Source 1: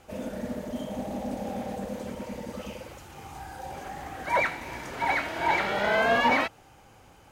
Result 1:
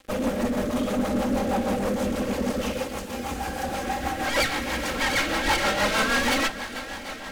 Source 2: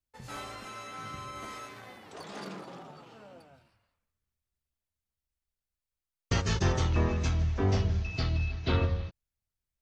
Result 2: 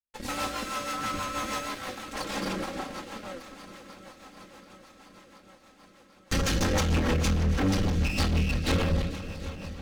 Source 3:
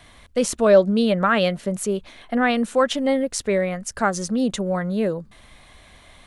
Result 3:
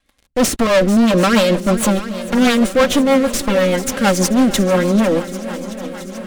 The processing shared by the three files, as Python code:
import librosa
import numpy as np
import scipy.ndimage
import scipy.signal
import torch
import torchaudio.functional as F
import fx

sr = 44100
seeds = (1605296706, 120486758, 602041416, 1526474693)

y = fx.lower_of_two(x, sr, delay_ms=3.7)
y = fx.leveller(y, sr, passes=5)
y = fx.echo_swing(y, sr, ms=733, ratio=1.5, feedback_pct=68, wet_db=-15.0)
y = fx.rotary(y, sr, hz=6.3)
y = y * librosa.db_to_amplitude(-3.5)